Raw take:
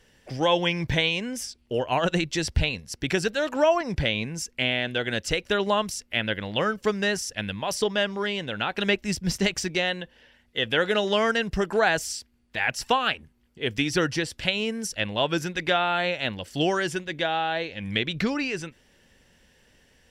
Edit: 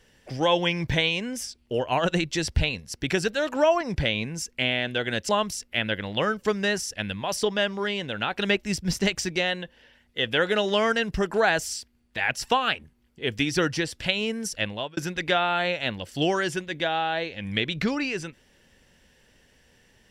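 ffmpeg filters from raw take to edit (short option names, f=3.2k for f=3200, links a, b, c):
-filter_complex "[0:a]asplit=3[a][b][c];[a]atrim=end=5.292[d];[b]atrim=start=5.678:end=15.36,asetpts=PTS-STARTPTS,afade=t=out:st=9.342:d=0.34[e];[c]atrim=start=15.36,asetpts=PTS-STARTPTS,afade=t=in:d=0.004:c=hsin[f];[e][f]concat=n=2:v=0:a=1[g];[d][g]acrossfade=d=0.004:c1=hsin:c2=hsin"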